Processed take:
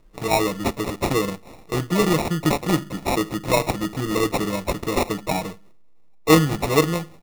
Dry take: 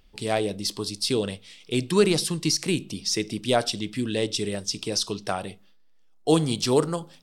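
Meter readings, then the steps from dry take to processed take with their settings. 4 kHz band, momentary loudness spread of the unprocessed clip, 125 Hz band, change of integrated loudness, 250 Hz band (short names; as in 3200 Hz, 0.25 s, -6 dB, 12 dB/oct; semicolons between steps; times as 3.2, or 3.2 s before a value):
-2.5 dB, 8 LU, +5.5 dB, +3.0 dB, +4.5 dB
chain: comb 6.3 ms, depth 99%; in parallel at 0 dB: vocal rider 0.5 s; on the sum: sample-and-hold 28×; gain -5.5 dB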